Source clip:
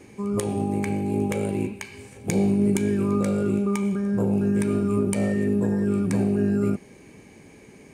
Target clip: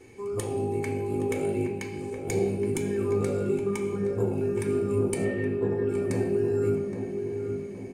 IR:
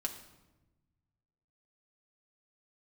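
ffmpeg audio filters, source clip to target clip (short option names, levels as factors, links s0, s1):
-filter_complex "[0:a]asettb=1/sr,asplit=3[s0][s1][s2];[s0]atrim=end=5.244[s3];[s1]atrim=start=5.24:end=5.89,asetpts=PTS-STARTPTS,afade=t=in:d=0.004:c=qsin,afade=t=out:st=0.646:d=0.004:c=qsin,highshelf=f=4700:t=q:w=1.5:g=-13[s4];[s2]atrim=start=5.886[s5];[s3][s4]acrossfade=d=0.004:c1=hsin:c2=qsin[s6];[s6][s5]acrossfade=d=0.004:c1=qsin:c2=hsin,asplit=2[s7][s8];[s8]adelay=820,lowpass=f=1200:p=1,volume=0.501,asplit=2[s9][s10];[s10]adelay=820,lowpass=f=1200:p=1,volume=0.54,asplit=2[s11][s12];[s12]adelay=820,lowpass=f=1200:p=1,volume=0.54,asplit=2[s13][s14];[s14]adelay=820,lowpass=f=1200:p=1,volume=0.54,asplit=2[s15][s16];[s16]adelay=820,lowpass=f=1200:p=1,volume=0.54,asplit=2[s17][s18];[s18]adelay=820,lowpass=f=1200:p=1,volume=0.54,asplit=2[s19][s20];[s20]adelay=820,lowpass=f=1200:p=1,volume=0.54[s21];[s7][s9][s11][s13][s15][s17][s19][s21]amix=inputs=8:normalize=0[s22];[1:a]atrim=start_sample=2205,asetrate=74970,aresample=44100[s23];[s22][s23]afir=irnorm=-1:irlink=0"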